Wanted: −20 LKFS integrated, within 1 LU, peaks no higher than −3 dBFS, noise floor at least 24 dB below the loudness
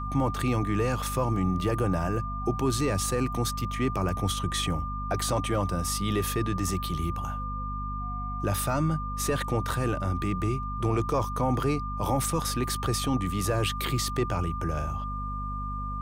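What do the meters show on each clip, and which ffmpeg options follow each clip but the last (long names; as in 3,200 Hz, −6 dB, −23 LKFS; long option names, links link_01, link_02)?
mains hum 50 Hz; hum harmonics up to 250 Hz; level of the hum −32 dBFS; interfering tone 1,200 Hz; level of the tone −34 dBFS; integrated loudness −28.5 LKFS; sample peak −15.0 dBFS; target loudness −20.0 LKFS
→ -af "bandreject=frequency=50:width_type=h:width=6,bandreject=frequency=100:width_type=h:width=6,bandreject=frequency=150:width_type=h:width=6,bandreject=frequency=200:width_type=h:width=6,bandreject=frequency=250:width_type=h:width=6"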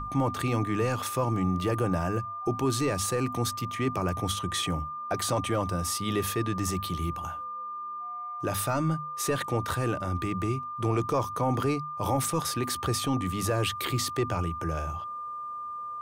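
mains hum none found; interfering tone 1,200 Hz; level of the tone −34 dBFS
→ -af "bandreject=frequency=1200:width=30"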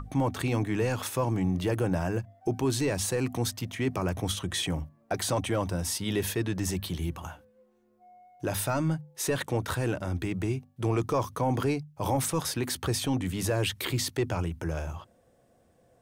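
interfering tone none found; integrated loudness −30.0 LKFS; sample peak −16.5 dBFS; target loudness −20.0 LKFS
→ -af "volume=10dB"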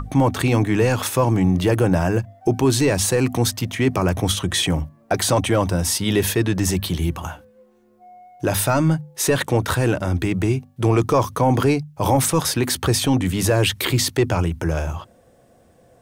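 integrated loudness −20.0 LKFS; sample peak −6.5 dBFS; background noise floor −55 dBFS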